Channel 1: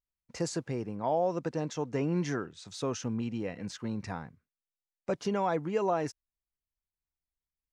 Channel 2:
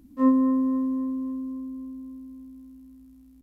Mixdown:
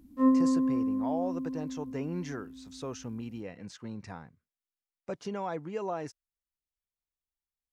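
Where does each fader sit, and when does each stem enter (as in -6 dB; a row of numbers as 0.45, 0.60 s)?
-5.5, -3.5 dB; 0.00, 0.00 s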